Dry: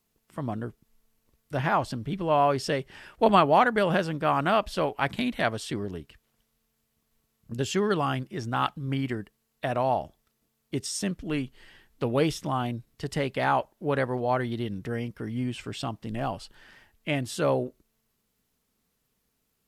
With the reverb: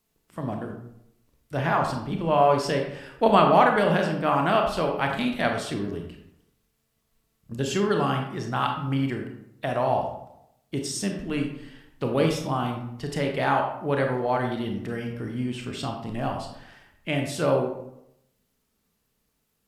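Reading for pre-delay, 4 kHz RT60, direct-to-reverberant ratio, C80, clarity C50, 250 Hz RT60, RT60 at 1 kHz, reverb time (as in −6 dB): 25 ms, 0.45 s, 2.5 dB, 8.0 dB, 5.0 dB, 0.80 s, 0.75 s, 0.80 s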